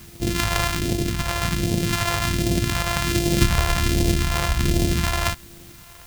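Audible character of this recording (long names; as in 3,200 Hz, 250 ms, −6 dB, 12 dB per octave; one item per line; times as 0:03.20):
a buzz of ramps at a fixed pitch in blocks of 128 samples
phaser sweep stages 2, 1.3 Hz, lowest notch 260–1,200 Hz
a quantiser's noise floor 8 bits, dither triangular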